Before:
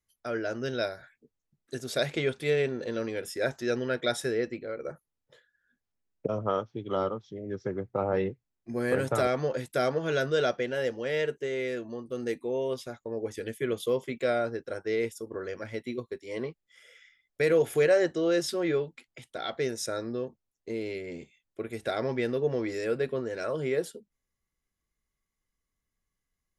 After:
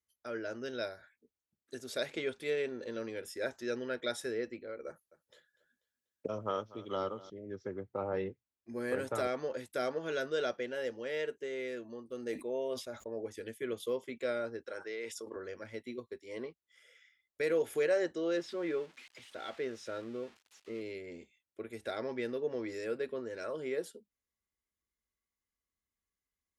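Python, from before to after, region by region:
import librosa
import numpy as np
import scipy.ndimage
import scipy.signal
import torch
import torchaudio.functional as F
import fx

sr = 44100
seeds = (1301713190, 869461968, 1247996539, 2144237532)

y = fx.chain(x, sr, fx.high_shelf(hz=2700.0, db=9.0),
    fx.echo_feedback(ms=244, feedback_pct=44, wet_db=-19), at=(4.87, 7.3))
y = fx.chain(y, sr, fx.peak_eq(hz=630.0, db=8.5, octaves=0.29),
    fx.sustainer(db_per_s=130.0), at=(12.25, 13.23))
y = fx.chain(y, sr, fx.highpass(hz=790.0, slope=6),
    fx.air_absorb(metres=58.0),
    fx.env_flatten(amount_pct=70), at=(14.66, 15.36))
y = fx.chain(y, sr, fx.crossing_spikes(level_db=-28.0),
    fx.lowpass(hz=2900.0, slope=12), at=(18.37, 20.81))
y = scipy.signal.sosfilt(scipy.signal.butter(2, 51.0, 'highpass', fs=sr, output='sos'), y)
y = fx.peak_eq(y, sr, hz=140.0, db=-14.0, octaves=0.38)
y = fx.notch(y, sr, hz=710.0, q=15.0)
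y = y * librosa.db_to_amplitude(-7.0)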